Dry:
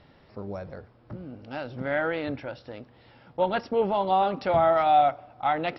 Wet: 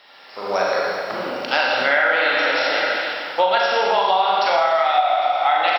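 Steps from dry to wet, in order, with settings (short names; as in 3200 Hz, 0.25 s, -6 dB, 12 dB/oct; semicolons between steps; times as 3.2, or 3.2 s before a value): high shelf 3200 Hz +9.5 dB; echo 0.805 s -18 dB; Schroeder reverb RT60 1.9 s, combs from 32 ms, DRR -4 dB; AGC gain up to 14 dB; HPF 820 Hz 12 dB/oct; compressor, threshold -23 dBFS, peak gain reduction 12 dB; gain +8.5 dB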